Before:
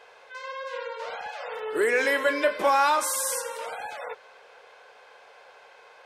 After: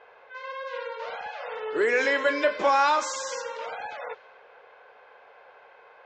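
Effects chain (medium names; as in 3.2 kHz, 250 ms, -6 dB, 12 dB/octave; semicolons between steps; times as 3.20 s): resampled via 16 kHz; level-controlled noise filter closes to 2 kHz, open at -23 dBFS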